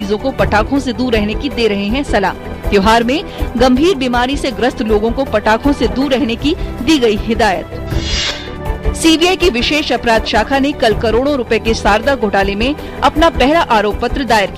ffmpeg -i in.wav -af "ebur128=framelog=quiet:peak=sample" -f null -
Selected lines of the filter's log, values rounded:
Integrated loudness:
  I:         -13.5 LUFS
  Threshold: -23.5 LUFS
Loudness range:
  LRA:         1.6 LU
  Threshold: -33.5 LUFS
  LRA low:   -14.2 LUFS
  LRA high:  -12.6 LUFS
Sample peak:
  Peak:       -2.7 dBFS